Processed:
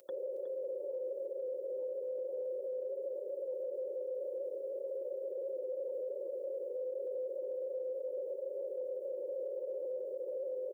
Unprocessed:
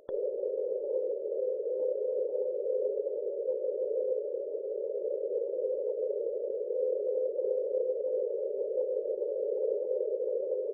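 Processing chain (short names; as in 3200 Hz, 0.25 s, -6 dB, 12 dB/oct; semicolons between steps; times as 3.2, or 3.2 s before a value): comb 5.6 ms, depth 55%; small resonant body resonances 210/310/530 Hz, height 10 dB, ringing for 45 ms; on a send: echo 0.365 s -10.5 dB; on the sum: limiter -21.5 dBFS, peak gain reduction 11 dB; differentiator; gain +11 dB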